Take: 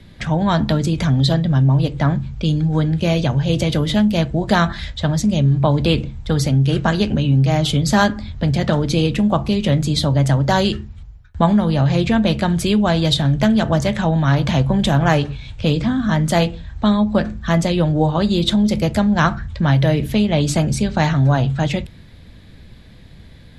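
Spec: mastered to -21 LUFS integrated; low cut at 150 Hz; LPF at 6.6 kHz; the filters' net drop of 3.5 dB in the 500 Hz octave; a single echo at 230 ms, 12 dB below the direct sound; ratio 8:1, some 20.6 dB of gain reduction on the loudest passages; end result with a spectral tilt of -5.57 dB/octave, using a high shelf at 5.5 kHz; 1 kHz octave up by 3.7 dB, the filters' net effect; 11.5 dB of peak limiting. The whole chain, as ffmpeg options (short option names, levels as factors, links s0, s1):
-af "highpass=150,lowpass=6600,equalizer=f=500:t=o:g=-7.5,equalizer=f=1000:t=o:g=7.5,highshelf=f=5500:g=-7.5,acompressor=threshold=0.0316:ratio=8,alimiter=level_in=1.5:limit=0.0631:level=0:latency=1,volume=0.668,aecho=1:1:230:0.251,volume=5.62"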